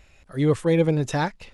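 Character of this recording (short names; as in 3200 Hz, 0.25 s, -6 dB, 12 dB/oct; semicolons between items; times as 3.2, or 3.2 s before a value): noise floor -57 dBFS; spectral tilt -6.0 dB/oct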